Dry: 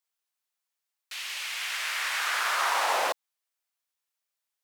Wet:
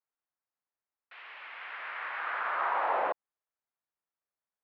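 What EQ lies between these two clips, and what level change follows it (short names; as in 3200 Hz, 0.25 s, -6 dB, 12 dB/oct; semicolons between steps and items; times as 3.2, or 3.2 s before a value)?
LPF 1700 Hz 12 dB/oct; air absorption 360 m; 0.0 dB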